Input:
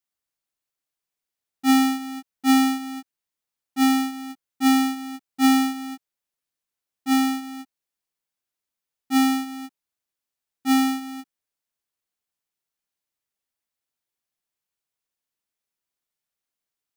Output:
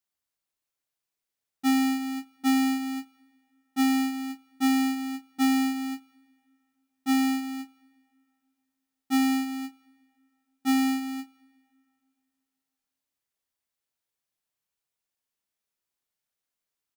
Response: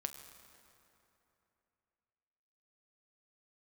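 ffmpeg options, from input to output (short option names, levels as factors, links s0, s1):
-filter_complex "[0:a]asplit=2[s0][s1];[s1]adelay=26,volume=0.316[s2];[s0][s2]amix=inputs=2:normalize=0,acompressor=threshold=0.0891:ratio=6,asplit=2[s3][s4];[1:a]atrim=start_sample=2205,asetrate=52920,aresample=44100[s5];[s4][s5]afir=irnorm=-1:irlink=0,volume=0.316[s6];[s3][s6]amix=inputs=2:normalize=0,volume=0.75"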